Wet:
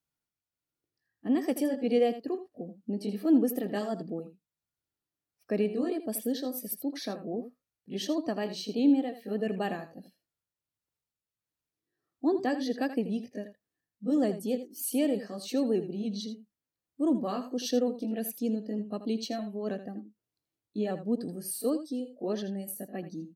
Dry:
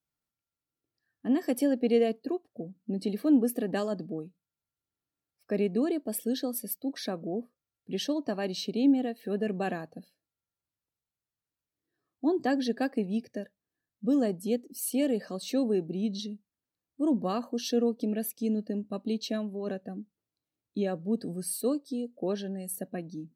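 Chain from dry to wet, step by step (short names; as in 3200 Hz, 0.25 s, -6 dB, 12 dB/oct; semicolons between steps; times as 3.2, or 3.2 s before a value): repeated pitch sweeps +1 st, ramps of 0.303 s; echo 81 ms -12 dB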